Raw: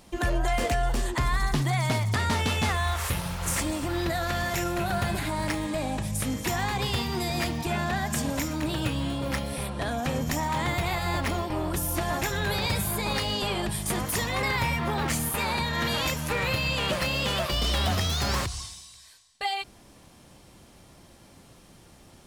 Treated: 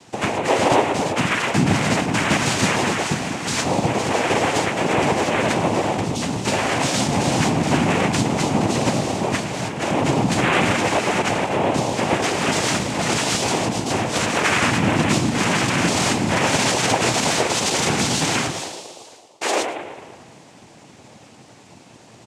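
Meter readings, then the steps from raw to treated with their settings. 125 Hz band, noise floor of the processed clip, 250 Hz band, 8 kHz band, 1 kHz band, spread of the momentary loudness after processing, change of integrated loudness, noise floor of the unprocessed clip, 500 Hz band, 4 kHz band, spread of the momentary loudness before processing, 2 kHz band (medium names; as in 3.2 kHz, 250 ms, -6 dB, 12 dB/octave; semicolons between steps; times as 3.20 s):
+4.5 dB, -47 dBFS, +10.0 dB, +9.5 dB, +9.0 dB, 5 LU, +8.0 dB, -53 dBFS, +10.5 dB, +6.5 dB, 4 LU, +8.0 dB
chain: doubling 13 ms -4.5 dB; band-passed feedback delay 112 ms, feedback 73%, band-pass 480 Hz, level -4.5 dB; noise-vocoded speech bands 4; trim +6.5 dB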